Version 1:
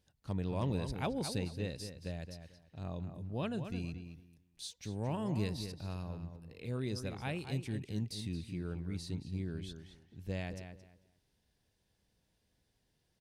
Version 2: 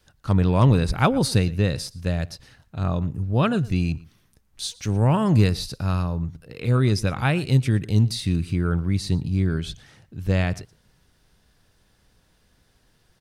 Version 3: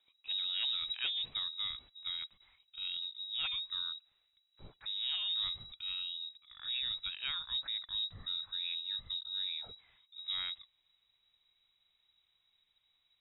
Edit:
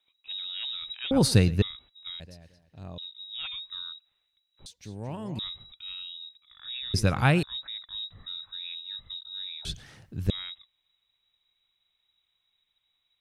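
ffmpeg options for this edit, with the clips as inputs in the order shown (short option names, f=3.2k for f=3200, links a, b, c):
-filter_complex "[1:a]asplit=3[a][b][c];[0:a]asplit=2[d][e];[2:a]asplit=6[f][g][h][i][j][k];[f]atrim=end=1.112[l];[a]atrim=start=1.108:end=1.622[m];[g]atrim=start=1.618:end=2.202[n];[d]atrim=start=2.198:end=2.982[o];[h]atrim=start=2.978:end=4.662[p];[e]atrim=start=4.658:end=5.392[q];[i]atrim=start=5.388:end=6.942[r];[b]atrim=start=6.938:end=7.432[s];[j]atrim=start=7.428:end=9.652[t];[c]atrim=start=9.648:end=10.302[u];[k]atrim=start=10.298[v];[l][m]acrossfade=d=0.004:c1=hsin:c2=hsin[w];[w][n]acrossfade=d=0.004:c1=hsin:c2=hsin[x];[x][o]acrossfade=d=0.004:c1=hsin:c2=hsin[y];[y][p]acrossfade=d=0.004:c1=hsin:c2=hsin[z];[z][q]acrossfade=d=0.004:c1=hsin:c2=hsin[aa];[aa][r]acrossfade=d=0.004:c1=hsin:c2=hsin[ab];[ab][s]acrossfade=d=0.004:c1=hsin:c2=hsin[ac];[ac][t]acrossfade=d=0.004:c1=hsin:c2=hsin[ad];[ad][u]acrossfade=d=0.004:c1=hsin:c2=hsin[ae];[ae][v]acrossfade=d=0.004:c1=hsin:c2=hsin"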